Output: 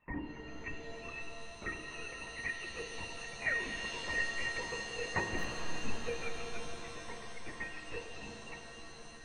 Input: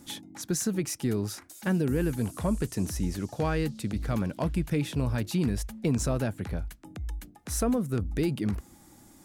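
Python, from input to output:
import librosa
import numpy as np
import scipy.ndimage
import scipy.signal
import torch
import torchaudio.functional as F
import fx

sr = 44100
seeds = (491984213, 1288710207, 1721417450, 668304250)

p1 = fx.sine_speech(x, sr)
p2 = scipy.signal.sosfilt(scipy.signal.bessel(2, 440.0, 'highpass', norm='mag', fs=sr, output='sos'), p1)
p3 = fx.level_steps(p2, sr, step_db=14)
p4 = p2 + (p3 * librosa.db_to_amplitude(0.0))
p5 = fx.transient(p4, sr, attack_db=12, sustain_db=-10)
p6 = fx.over_compress(p5, sr, threshold_db=-23.0, ratio=-0.5)
p7 = 10.0 ** (-15.0 / 20.0) * np.tanh(p6 / 10.0 ** (-15.0 / 20.0))
p8 = fx.freq_invert(p7, sr, carrier_hz=3000)
p9 = fx.octave_resonator(p8, sr, note='A#', decay_s=0.31)
p10 = p9 + fx.echo_split(p9, sr, split_hz=1000.0, low_ms=520, high_ms=298, feedback_pct=52, wet_db=-15.0, dry=0)
p11 = fx.lpc_vocoder(p10, sr, seeds[0], excitation='whisper', order=10)
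p12 = fx.buffer_glitch(p11, sr, at_s=(5.38,), block=256, repeats=10)
p13 = fx.rev_shimmer(p12, sr, seeds[1], rt60_s=3.8, semitones=7, shimmer_db=-2, drr_db=5.0)
y = p13 * librosa.db_to_amplitude(13.5)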